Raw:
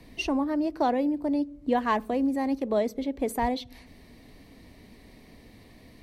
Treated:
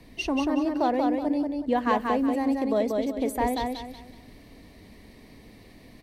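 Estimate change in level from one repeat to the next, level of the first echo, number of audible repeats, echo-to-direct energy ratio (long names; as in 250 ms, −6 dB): −10.0 dB, −3.5 dB, 4, −3.0 dB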